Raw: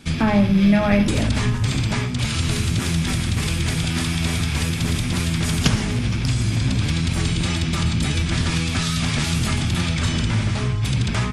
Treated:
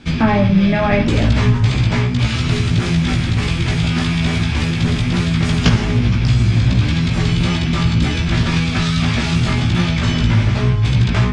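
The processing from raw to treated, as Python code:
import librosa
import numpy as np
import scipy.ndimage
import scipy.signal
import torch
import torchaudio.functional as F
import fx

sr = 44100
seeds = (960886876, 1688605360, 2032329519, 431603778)

y = fx.air_absorb(x, sr, metres=120.0)
y = fx.doubler(y, sr, ms=17.0, db=-3.5)
y = F.gain(torch.from_numpy(y), 4.0).numpy()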